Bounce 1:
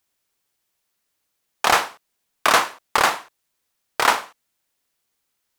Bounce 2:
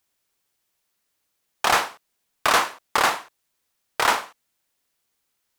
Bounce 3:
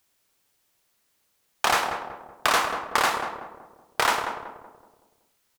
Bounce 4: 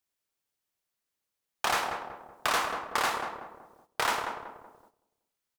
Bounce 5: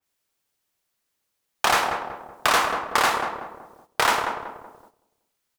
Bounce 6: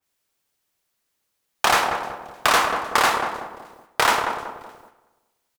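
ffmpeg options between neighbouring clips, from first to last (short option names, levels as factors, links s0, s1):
-af "asoftclip=type=tanh:threshold=0.316"
-filter_complex "[0:a]acompressor=threshold=0.0355:ratio=2,asplit=2[s0][s1];[s1]adelay=188,lowpass=f=1000:p=1,volume=0.596,asplit=2[s2][s3];[s3]adelay=188,lowpass=f=1000:p=1,volume=0.5,asplit=2[s4][s5];[s5]adelay=188,lowpass=f=1000:p=1,volume=0.5,asplit=2[s6][s7];[s7]adelay=188,lowpass=f=1000:p=1,volume=0.5,asplit=2[s8][s9];[s9]adelay=188,lowpass=f=1000:p=1,volume=0.5,asplit=2[s10][s11];[s11]adelay=188,lowpass=f=1000:p=1,volume=0.5[s12];[s2][s4][s6][s8][s10][s12]amix=inputs=6:normalize=0[s13];[s0][s13]amix=inputs=2:normalize=0,volume=1.68"
-filter_complex "[0:a]agate=range=0.282:threshold=0.00178:ratio=16:detection=peak,asplit=2[s0][s1];[s1]volume=13.3,asoftclip=hard,volume=0.075,volume=0.596[s2];[s0][s2]amix=inputs=2:normalize=0,volume=0.376"
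-af "adynamicequalizer=threshold=0.00891:dfrequency=3000:dqfactor=0.7:tfrequency=3000:tqfactor=0.7:attack=5:release=100:ratio=0.375:range=2:mode=cutabove:tftype=highshelf,volume=2.51"
-af "aecho=1:1:307|614:0.0708|0.0219,volume=1.26"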